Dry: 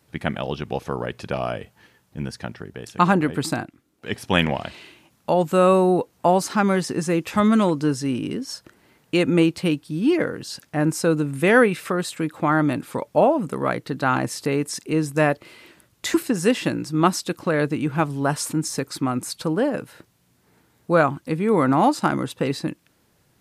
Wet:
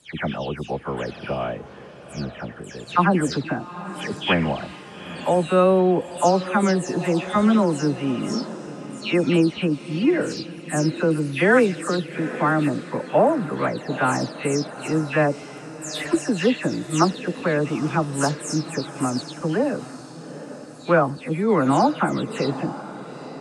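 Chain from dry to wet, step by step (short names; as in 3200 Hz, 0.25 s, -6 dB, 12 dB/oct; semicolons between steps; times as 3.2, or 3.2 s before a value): spectral delay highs early, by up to 0.227 s; LPF 9100 Hz 24 dB/oct; diffused feedback echo 0.852 s, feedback 51%, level -14 dB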